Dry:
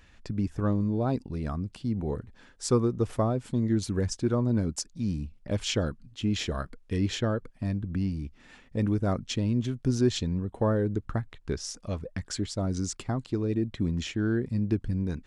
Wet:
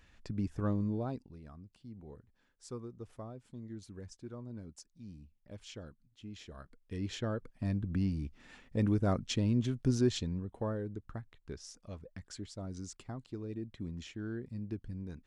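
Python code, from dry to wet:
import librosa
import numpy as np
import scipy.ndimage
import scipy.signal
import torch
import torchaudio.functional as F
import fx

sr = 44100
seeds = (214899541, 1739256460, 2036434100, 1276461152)

y = fx.gain(x, sr, db=fx.line((0.92, -6.0), (1.42, -19.5), (6.45, -19.5), (6.93, -11.5), (7.77, -3.0), (9.86, -3.0), (10.95, -13.0)))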